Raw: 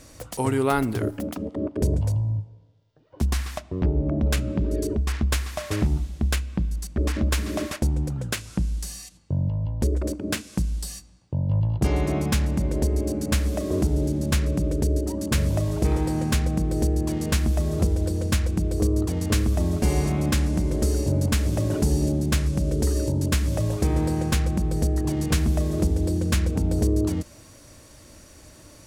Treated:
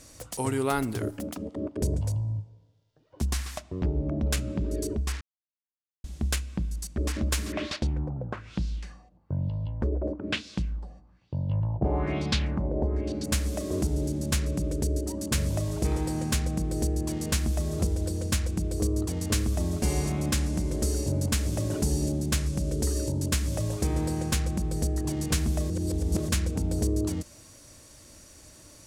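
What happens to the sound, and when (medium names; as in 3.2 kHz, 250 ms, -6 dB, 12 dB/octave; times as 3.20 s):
5.21–6.04 s: mute
7.52–13.24 s: LFO low-pass sine 1.1 Hz 680–4300 Hz
25.70–26.29 s: reverse
whole clip: peaking EQ 7.7 kHz +6 dB 1.9 oct; trim -5 dB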